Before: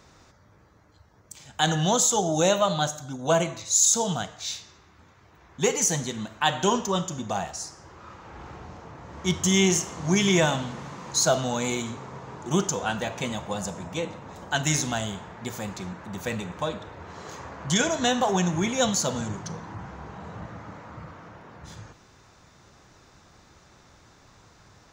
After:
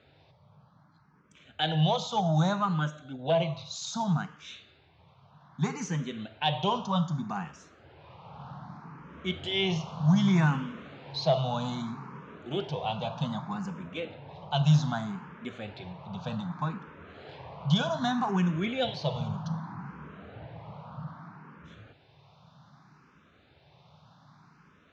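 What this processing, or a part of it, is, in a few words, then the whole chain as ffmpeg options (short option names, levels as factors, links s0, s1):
barber-pole phaser into a guitar amplifier: -filter_complex "[0:a]asplit=2[s0][s1];[s1]afreqshift=0.64[s2];[s0][s2]amix=inputs=2:normalize=1,asoftclip=type=tanh:threshold=0.2,highpass=110,equalizer=f=150:t=q:w=4:g=10,equalizer=f=340:t=q:w=4:g=-7,equalizer=f=490:t=q:w=4:g=-4,equalizer=f=1900:t=q:w=4:g=-7,lowpass=f=4000:w=0.5412,lowpass=f=4000:w=1.3066"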